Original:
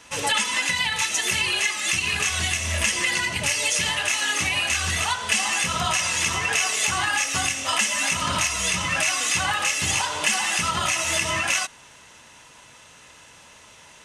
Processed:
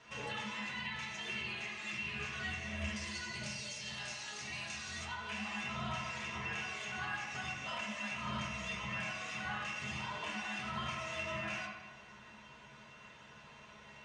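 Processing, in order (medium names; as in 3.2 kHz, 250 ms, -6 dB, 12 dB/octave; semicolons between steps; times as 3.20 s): 2.96–5.05 s: high-order bell 6.5 kHz +13 dB; compression 2.5:1, threshold -35 dBFS, peak gain reduction 17.5 dB; distance through air 140 m; feedback comb 210 Hz, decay 0.23 s, harmonics odd, mix 80%; reverberation RT60 1.3 s, pre-delay 3 ms, DRR -4 dB; trim +1 dB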